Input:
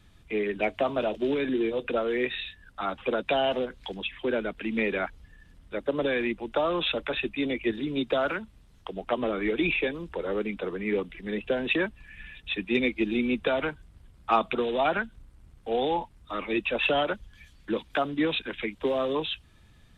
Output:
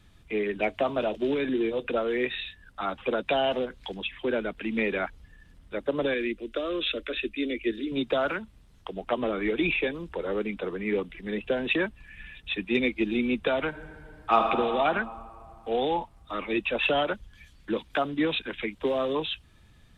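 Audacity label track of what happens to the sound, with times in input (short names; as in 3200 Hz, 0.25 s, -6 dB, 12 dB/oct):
6.140000	7.920000	fixed phaser centre 350 Hz, stages 4
13.680000	14.500000	reverb throw, RT60 2.5 s, DRR 1 dB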